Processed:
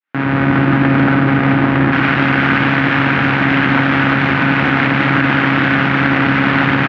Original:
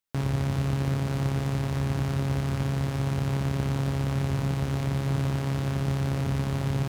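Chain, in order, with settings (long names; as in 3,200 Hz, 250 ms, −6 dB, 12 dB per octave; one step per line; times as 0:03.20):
fade in at the beginning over 0.65 s
tilt shelving filter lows −4.5 dB, about 1,100 Hz, from 0:01.91 lows −10 dB
tube saturation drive 30 dB, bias 0.25
loudspeaker in its box 260–2,300 Hz, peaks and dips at 290 Hz +7 dB, 410 Hz −8 dB, 610 Hz −6 dB, 1,000 Hz −4 dB, 1,500 Hz +4 dB
double-tracking delay 48 ms −12 dB
boost into a limiter +33.5 dB
level −1 dB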